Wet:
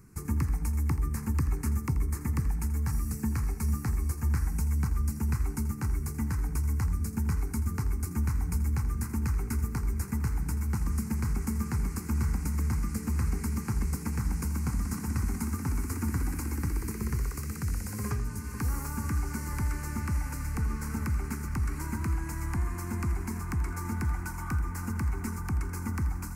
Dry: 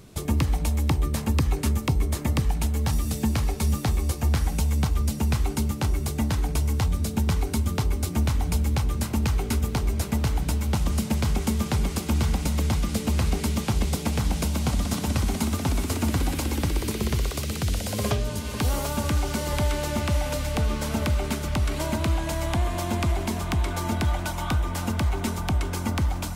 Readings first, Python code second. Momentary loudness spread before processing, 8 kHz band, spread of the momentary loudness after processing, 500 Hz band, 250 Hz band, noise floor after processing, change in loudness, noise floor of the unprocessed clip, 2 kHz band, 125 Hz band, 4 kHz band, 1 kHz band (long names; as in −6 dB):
2 LU, −7.5 dB, 4 LU, −14.0 dB, −6.5 dB, −38 dBFS, −5.5 dB, −32 dBFS, −7.5 dB, −5.0 dB, −17.5 dB, −9.0 dB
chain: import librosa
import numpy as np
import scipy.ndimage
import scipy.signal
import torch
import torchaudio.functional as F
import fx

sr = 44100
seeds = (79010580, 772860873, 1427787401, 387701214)

y = fx.peak_eq(x, sr, hz=3000.0, db=-10.5, octaves=0.39)
y = fx.fixed_phaser(y, sr, hz=1500.0, stages=4)
y = y + 10.0 ** (-14.0 / 20.0) * np.pad(y, (int(83 * sr / 1000.0), 0))[:len(y)]
y = y * librosa.db_to_amplitude(-5.0)